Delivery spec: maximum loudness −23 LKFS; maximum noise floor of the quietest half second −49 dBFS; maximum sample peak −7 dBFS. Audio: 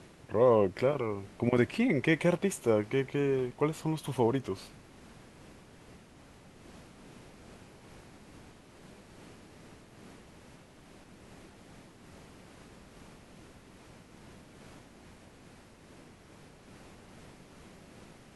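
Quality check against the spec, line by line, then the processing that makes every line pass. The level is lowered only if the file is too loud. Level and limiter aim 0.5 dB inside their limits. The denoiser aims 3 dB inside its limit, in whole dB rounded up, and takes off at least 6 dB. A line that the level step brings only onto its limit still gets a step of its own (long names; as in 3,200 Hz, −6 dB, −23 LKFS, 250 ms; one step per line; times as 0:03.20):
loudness −29.5 LKFS: in spec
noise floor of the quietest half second −55 dBFS: in spec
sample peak −12.0 dBFS: in spec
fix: no processing needed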